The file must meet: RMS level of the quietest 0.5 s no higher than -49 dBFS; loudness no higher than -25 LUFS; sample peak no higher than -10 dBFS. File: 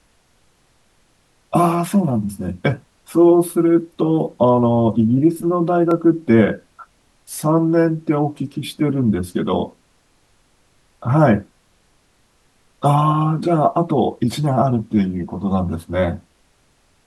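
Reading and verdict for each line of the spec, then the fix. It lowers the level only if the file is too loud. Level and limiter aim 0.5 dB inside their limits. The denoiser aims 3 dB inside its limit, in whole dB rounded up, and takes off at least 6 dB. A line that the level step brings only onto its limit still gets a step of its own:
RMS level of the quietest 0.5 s -59 dBFS: pass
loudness -18.0 LUFS: fail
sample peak -2.5 dBFS: fail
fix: trim -7.5 dB; peak limiter -10.5 dBFS

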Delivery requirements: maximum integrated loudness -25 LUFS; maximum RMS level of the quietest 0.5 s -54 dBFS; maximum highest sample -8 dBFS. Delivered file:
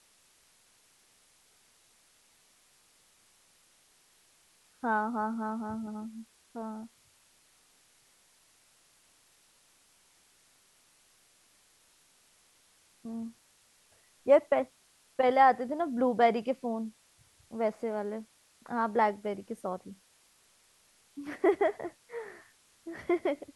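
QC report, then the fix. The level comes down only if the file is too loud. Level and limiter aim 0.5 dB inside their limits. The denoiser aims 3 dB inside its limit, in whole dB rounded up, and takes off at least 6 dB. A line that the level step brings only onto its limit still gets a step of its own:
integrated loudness -31.0 LUFS: pass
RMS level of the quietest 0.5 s -65 dBFS: pass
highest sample -11.0 dBFS: pass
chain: none needed

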